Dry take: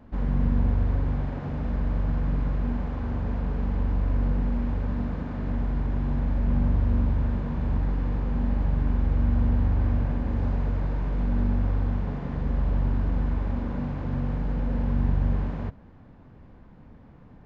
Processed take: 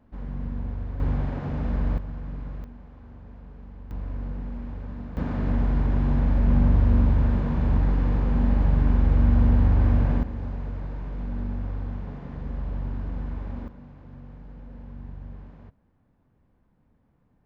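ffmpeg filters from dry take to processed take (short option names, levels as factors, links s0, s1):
-af "asetnsamples=n=441:p=0,asendcmd='1 volume volume 1.5dB;1.98 volume volume -9dB;2.64 volume volume -16.5dB;3.91 volume volume -8dB;5.17 volume volume 4dB;10.23 volume volume -6dB;13.68 volume volume -16dB',volume=0.376"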